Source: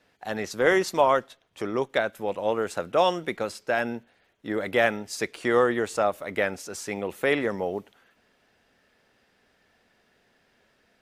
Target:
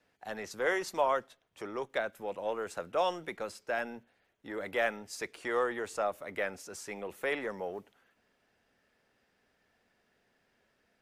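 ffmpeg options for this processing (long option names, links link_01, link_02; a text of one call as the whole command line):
ffmpeg -i in.wav -filter_complex "[0:a]acrossover=split=400|1400[link_01][link_02][link_03];[link_01]asoftclip=type=tanh:threshold=-37dB[link_04];[link_04][link_02][link_03]amix=inputs=3:normalize=0,equalizer=frequency=3700:width_type=o:width=0.77:gain=-2.5,volume=-7.5dB" out.wav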